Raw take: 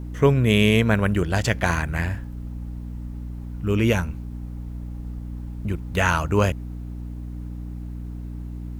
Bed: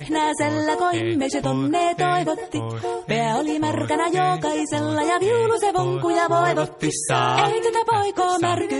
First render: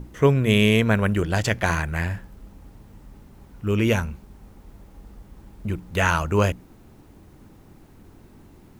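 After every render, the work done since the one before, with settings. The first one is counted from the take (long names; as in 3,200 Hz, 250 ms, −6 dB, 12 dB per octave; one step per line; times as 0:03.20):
mains-hum notches 60/120/180/240/300 Hz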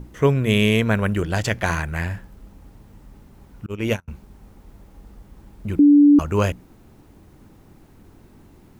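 0:03.66–0:04.08: noise gate −20 dBFS, range −38 dB
0:05.79–0:06.19: beep over 290 Hz −8 dBFS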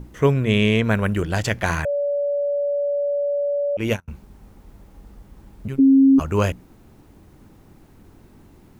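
0:00.44–0:00.84: high-frequency loss of the air 63 metres
0:01.85–0:03.77: beep over 573 Hz −19 dBFS
0:05.68–0:06.20: phases set to zero 135 Hz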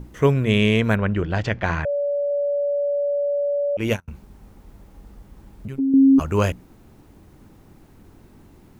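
0:00.95–0:02.31: high-frequency loss of the air 190 metres
0:04.09–0:05.94: downward compressor 1.5 to 1, threshold −33 dBFS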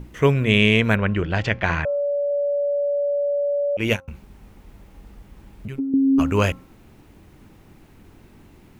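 parametric band 2,500 Hz +6 dB 1.1 octaves
hum removal 267.9 Hz, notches 5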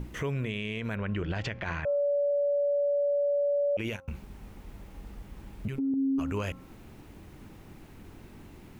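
downward compressor, threshold −25 dBFS, peak gain reduction 13 dB
brickwall limiter −23.5 dBFS, peak gain reduction 12 dB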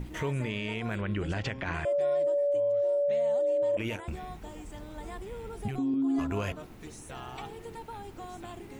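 mix in bed −23.5 dB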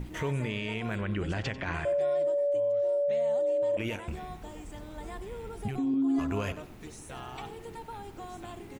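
repeating echo 93 ms, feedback 33%, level −16 dB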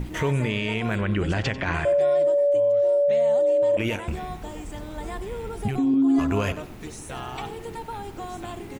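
level +7.5 dB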